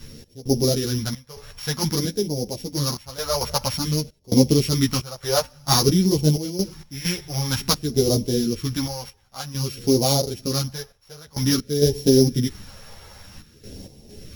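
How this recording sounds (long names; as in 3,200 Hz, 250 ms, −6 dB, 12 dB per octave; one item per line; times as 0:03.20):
a buzz of ramps at a fixed pitch in blocks of 8 samples
phaser sweep stages 2, 0.52 Hz, lowest notch 270–1,300 Hz
sample-and-hold tremolo 4.4 Hz, depth 95%
a shimmering, thickened sound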